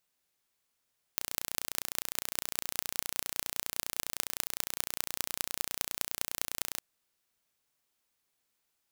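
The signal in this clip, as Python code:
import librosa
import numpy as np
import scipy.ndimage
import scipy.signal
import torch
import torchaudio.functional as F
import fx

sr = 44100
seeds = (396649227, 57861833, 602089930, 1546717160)

y = fx.impulse_train(sr, length_s=5.62, per_s=29.8, accent_every=6, level_db=-1.5)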